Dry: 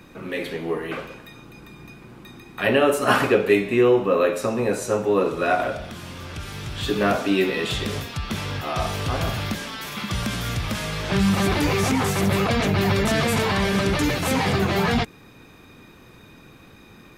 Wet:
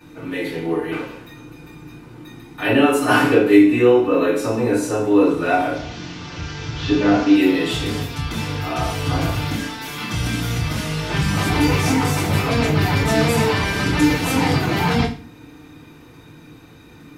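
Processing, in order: 5.74–7.35 delta modulation 32 kbps, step -32 dBFS; FDN reverb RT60 0.36 s, low-frequency decay 1.5×, high-frequency decay 1×, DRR -9 dB; gain -7.5 dB

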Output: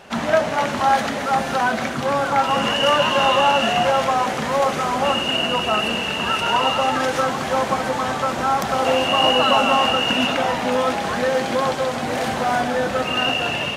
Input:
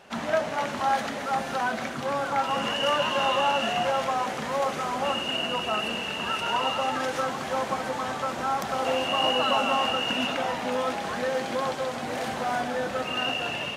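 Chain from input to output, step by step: low shelf 120 Hz +5 dB; gain +7.5 dB

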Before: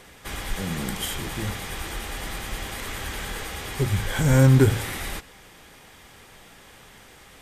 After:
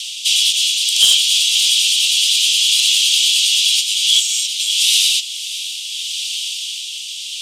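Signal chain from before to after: on a send at -8 dB: reverb RT60 0.20 s, pre-delay 3 ms; on the sum: rotary speaker horn 0.6 Hz; LPF 6800 Hz 12 dB/oct; compressor 6:1, threshold -28 dBFS, peak gain reduction 15 dB; steep high-pass 2800 Hz 72 dB/oct; soft clip -27.5 dBFS, distortion -24 dB; vocal rider within 3 dB 0.5 s; diffused feedback echo 0.584 s, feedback 46%, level -13 dB; maximiser +33 dB; gain -2 dB

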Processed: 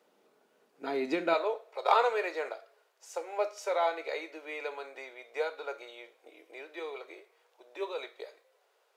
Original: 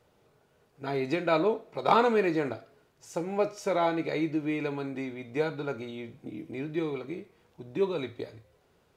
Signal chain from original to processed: steep high-pass 210 Hz 36 dB/oct, from 1.33 s 460 Hz; gain -1.5 dB

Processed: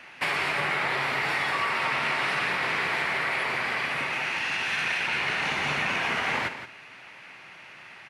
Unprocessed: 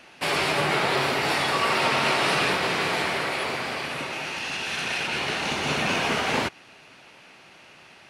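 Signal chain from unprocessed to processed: ten-band EQ 125 Hz +4 dB, 1000 Hz +5 dB, 2000 Hz +11 dB; compressor, threshold -20 dBFS, peak gain reduction 8 dB; doubler 49 ms -14 dB; on a send: echo 0.171 s -11 dB; on the sum: gain -4.5 dB

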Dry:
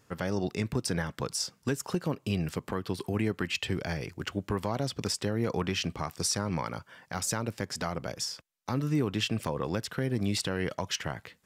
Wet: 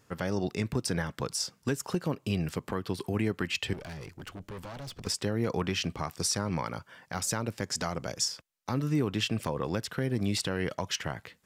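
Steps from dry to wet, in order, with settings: 3.73–5.07 tube stage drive 38 dB, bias 0.55; 7.62–8.28 bell 6800 Hz +7 dB 0.81 oct

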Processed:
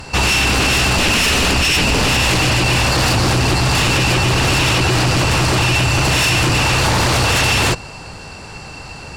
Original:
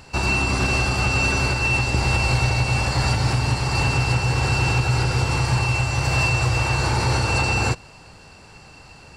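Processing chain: 0.97–2.08 low shelf 79 Hz +10.5 dB; sine folder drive 12 dB, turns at -8 dBFS; gain -3.5 dB

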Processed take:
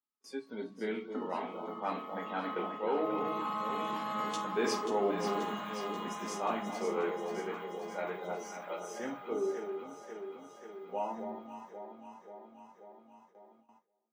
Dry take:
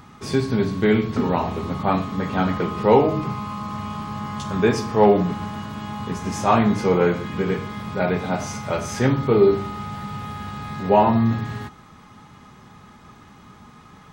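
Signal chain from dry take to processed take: Doppler pass-by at 4.55, 5 m/s, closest 1.4 m; reverse; compressor 8:1, threshold -36 dBFS, peak gain reduction 22.5 dB; reverse; spectral noise reduction 16 dB; on a send: echo with dull and thin repeats by turns 0.267 s, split 850 Hz, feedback 80%, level -6 dB; on the sum: gate with hold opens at -57 dBFS; HPF 260 Hz 24 dB/oct; gain +8 dB

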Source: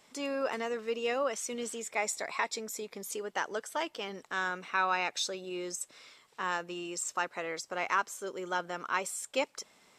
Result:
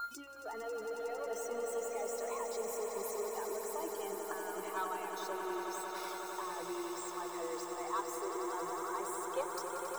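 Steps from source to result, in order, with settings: whine 1400 Hz -46 dBFS; flipped gate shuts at -35 dBFS, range -32 dB; level quantiser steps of 20 dB; power-law curve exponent 0.35; high shelf 9700 Hz +11 dB; reverb removal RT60 0.54 s; band shelf 610 Hz +11.5 dB 2.4 oct; hum 60 Hz, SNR 18 dB; spectral noise reduction 16 dB; swelling echo 91 ms, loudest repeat 8, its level -9 dB; gain +4.5 dB

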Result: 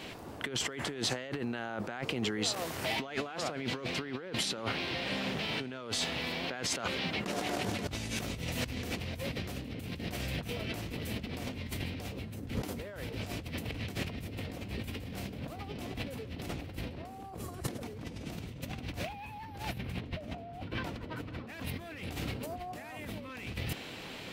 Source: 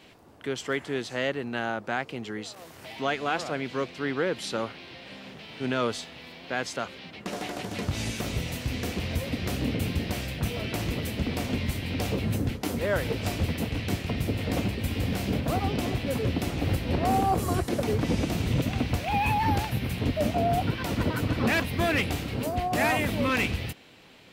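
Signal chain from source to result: 19.78–21.49 LPF 3500 Hz 6 dB/oct; negative-ratio compressor -39 dBFS, ratio -1

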